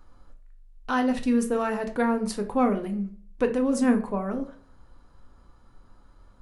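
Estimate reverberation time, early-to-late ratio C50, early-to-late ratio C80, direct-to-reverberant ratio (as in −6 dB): 0.50 s, 12.0 dB, 16.5 dB, 4.5 dB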